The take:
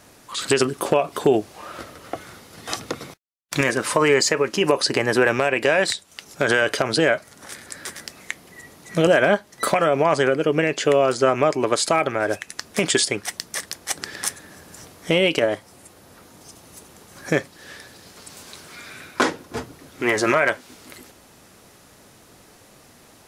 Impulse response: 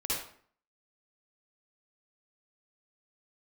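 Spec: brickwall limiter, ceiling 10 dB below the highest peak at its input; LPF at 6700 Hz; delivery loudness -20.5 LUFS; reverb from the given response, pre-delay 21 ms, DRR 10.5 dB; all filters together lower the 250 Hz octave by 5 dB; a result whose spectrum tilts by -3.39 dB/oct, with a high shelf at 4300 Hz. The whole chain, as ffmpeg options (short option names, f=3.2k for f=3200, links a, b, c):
-filter_complex "[0:a]lowpass=6.7k,equalizer=f=250:t=o:g=-7.5,highshelf=f=4.3k:g=-4,alimiter=limit=-15.5dB:level=0:latency=1,asplit=2[a][b];[1:a]atrim=start_sample=2205,adelay=21[c];[b][c]afir=irnorm=-1:irlink=0,volume=-16dB[d];[a][d]amix=inputs=2:normalize=0,volume=7.5dB"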